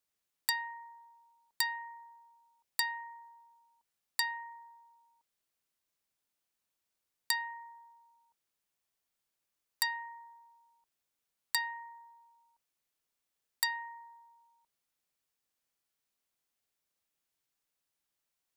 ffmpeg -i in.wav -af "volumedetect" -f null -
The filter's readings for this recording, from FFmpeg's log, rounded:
mean_volume: -44.0 dB
max_volume: -12.3 dB